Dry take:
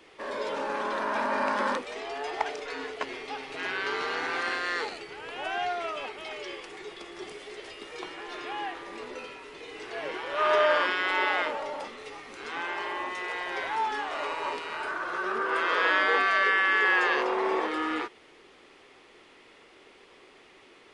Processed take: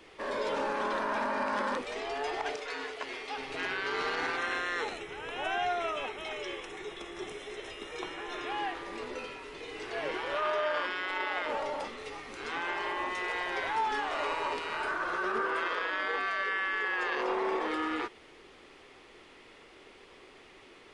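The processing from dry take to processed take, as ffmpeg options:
-filter_complex "[0:a]asettb=1/sr,asplit=3[a][b][c];[a]atrim=end=2.564[d];[b]atrim=start=2.56:end=3.38,asetpts=PTS-STARTPTS,afade=t=in:d=0.004:c=qsin,afade=t=out:st=0.816:d=0.004:c=qsin,lowshelf=f=320:g=-11.5[e];[c]atrim=start=3.376[f];[d][e]acrossfade=d=0.004:c1=hsin:c2=qsin[g];[g][f]acrossfade=d=0.004:c1=qsin:c2=hsin,asettb=1/sr,asplit=3[h][i][j];[h]atrim=end=4.374[k];[i]atrim=start=4.37:end=8.5,asetpts=PTS-STARTPTS,afade=t=in:d=0.004:c=qsin,afade=t=out:st=4.126:d=0.004:c=qsin,asuperstop=centerf=4600:order=8:qfactor=5.6[l];[j]atrim=start=8.496[m];[k][l]acrossfade=d=0.004:c1=hsin:c2=qsin[n];[n][m]acrossfade=d=0.004:c1=qsin:c2=hsin,lowshelf=f=98:g=9,alimiter=limit=-22.5dB:level=0:latency=1:release=43"

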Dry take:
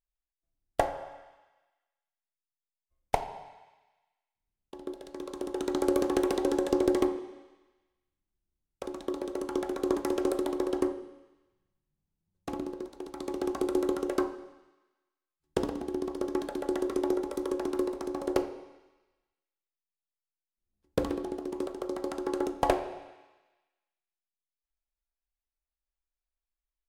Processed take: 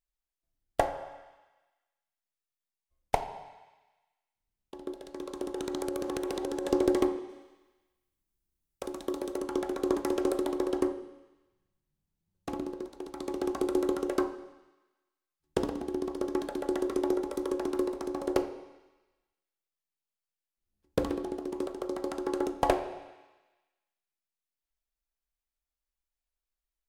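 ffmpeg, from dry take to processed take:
-filter_complex "[0:a]asettb=1/sr,asplit=3[a][b][c];[a]atrim=end=5.504[d];[b]atrim=start=5.5:end=6.66,asetpts=PTS-STARTPTS,afade=t=in:d=0.004:c=qsin,afade=t=out:st=1.156:d=0.004:c=qsin,acompressor=threshold=-29dB:ratio=6:attack=3.2:release=140:knee=1:detection=peak[e];[c]atrim=start=6.656[f];[d][e]acrossfade=d=0.004:c1=hsin:c2=qsin[g];[g][f]acrossfade=d=0.004:c1=qsin:c2=hsin,asettb=1/sr,asplit=3[h][i][j];[h]atrim=end=7.294[k];[i]atrim=start=7.29:end=9.38,asetpts=PTS-STARTPTS,afade=t=in:d=0.004:c=qsin,afade=t=out:st=2.086:d=0.004:c=qsin,highshelf=f=7.9k:g=9.5[l];[j]atrim=start=9.376[m];[k][l]acrossfade=d=0.004:c1=hsin:c2=qsin[n];[n][m]acrossfade=d=0.004:c1=qsin:c2=hsin"

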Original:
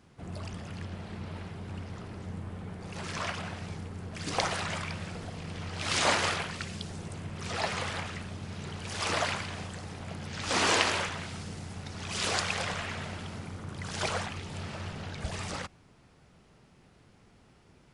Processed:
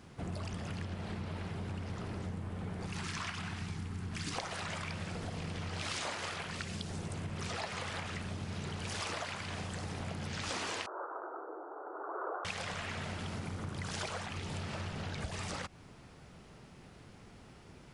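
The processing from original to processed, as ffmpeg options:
-filter_complex "[0:a]asettb=1/sr,asplit=3[a][b][c];[a]atrim=end=2.864[d];[b]atrim=start=2.86:end=4.36,asetpts=PTS-STARTPTS,afade=t=in:d=0.004:c=qsin,afade=t=out:st=1.496:d=0.004:c=qsin,equalizer=f=560:t=o:w=0.74:g=-13.5[e];[c]atrim=start=4.356[f];[d][e]acrossfade=d=0.004:c1=hsin:c2=qsin[g];[g][f]acrossfade=d=0.004:c1=qsin:c2=hsin,asettb=1/sr,asplit=3[h][i][j];[h]atrim=end=10.864[k];[i]atrim=start=10.86:end=12.45,asetpts=PTS-STARTPTS,afade=t=in:d=0.004:c=qsin,afade=t=out:st=1.586:d=0.004:c=qsin,asuperpass=centerf=680:order=20:qfactor=0.6[l];[j]atrim=start=12.446[m];[k][l]acrossfade=d=0.004:c1=hsin:c2=qsin[n];[n][m]acrossfade=d=0.004:c1=qsin:c2=hsin,acompressor=threshold=-41dB:ratio=10,volume=5dB"

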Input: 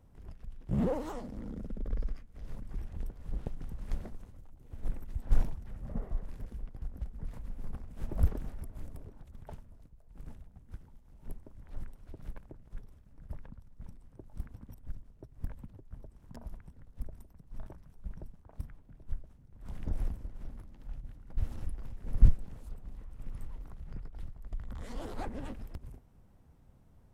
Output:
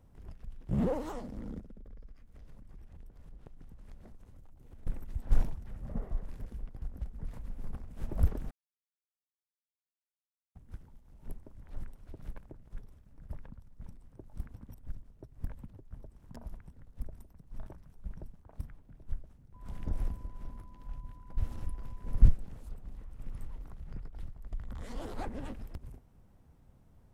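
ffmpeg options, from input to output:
-filter_complex "[0:a]asettb=1/sr,asplit=3[a][b][c];[a]atrim=end=1.594[d];[b]atrim=start=1.59:end=4.87,asetpts=PTS-STARTPTS,afade=t=in:d=0.004:c=qsin,afade=t=out:st=3.276:d=0.004:c=qsin,acompressor=threshold=-48dB:ratio=4:attack=3.2:release=140:knee=1:detection=peak[e];[c]atrim=start=4.866[f];[d][e]acrossfade=d=0.004:c1=hsin:c2=qsin[g];[g][f]acrossfade=d=0.004:c1=qsin:c2=hsin,asettb=1/sr,asplit=3[h][i][j];[h]atrim=end=19.544[k];[i]atrim=start=19.54:end=22.21,asetpts=PTS-STARTPTS,afade=t=in:d=0.004:c=qsin,afade=t=out:st=2.666:d=0.004:c=qsin,aeval=exprs='val(0)+0.001*sin(2*PI*1000*n/s)':c=same[l];[j]atrim=start=22.206[m];[k][l]acrossfade=d=0.004:c1=hsin:c2=qsin[n];[n][m]acrossfade=d=0.004:c1=qsin:c2=hsin,asplit=3[o][p][q];[o]atrim=end=8.51,asetpts=PTS-STARTPTS,afade=t=out:st=8.506:d=0.004:c=hsin[r];[p]atrim=start=8.51:end=10.55,asetpts=PTS-STARTPTS,volume=0[s];[q]atrim=start=10.55,asetpts=PTS-STARTPTS,afade=t=in:d=0.004:c=hsin[t];[r][s][t]concat=n=3:v=0:a=1"

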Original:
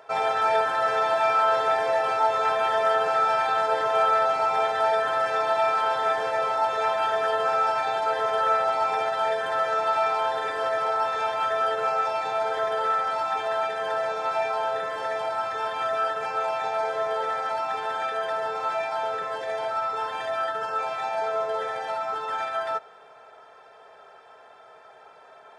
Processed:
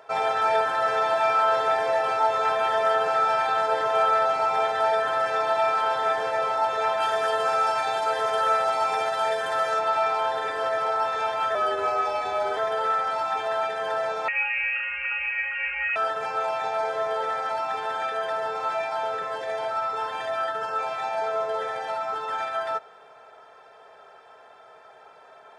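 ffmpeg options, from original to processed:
-filter_complex "[0:a]asettb=1/sr,asplit=3[a][b][c];[a]atrim=end=7.004[d];[b]atrim=start=7:end=9.79,asetpts=PTS-STARTPTS,afade=t=in:d=0.004:c=qsin,afade=t=out:st=2.786:d=0.004:c=qsin,aemphasis=mode=production:type=cd[e];[c]atrim=start=9.786[f];[d][e]acrossfade=d=0.004:c1=hsin:c2=qsin[g];[g][f]acrossfade=d=0.004:c1=qsin:c2=hsin,asettb=1/sr,asplit=3[h][i][j];[h]atrim=end=11.554[k];[i]atrim=start=11.55:end=12.57,asetpts=PTS-STARTPTS,afade=t=in:d=0.004:c=qsin,afade=t=out:st=1.016:d=0.004:c=qsin,afreqshift=-44[l];[j]atrim=start=12.566[m];[k][l]acrossfade=d=0.004:c1=hsin:c2=qsin[n];[n][m]acrossfade=d=0.004:c1=qsin:c2=hsin,asettb=1/sr,asplit=3[o][p][q];[o]atrim=end=14.284[r];[p]atrim=start=14.28:end=15.96,asetpts=PTS-STARTPTS,afade=t=in:d=0.004:c=qsin,afade=t=out:st=1.676:d=0.004:c=qsin,lowpass=f=2.7k:t=q:w=0.5098,lowpass=f=2.7k:t=q:w=0.6013,lowpass=f=2.7k:t=q:w=0.9,lowpass=f=2.7k:t=q:w=2.563,afreqshift=-3200[s];[q]atrim=start=15.956[t];[r][s]acrossfade=d=0.004:c1=hsin:c2=qsin[u];[u][t]acrossfade=d=0.004:c1=qsin:c2=hsin"

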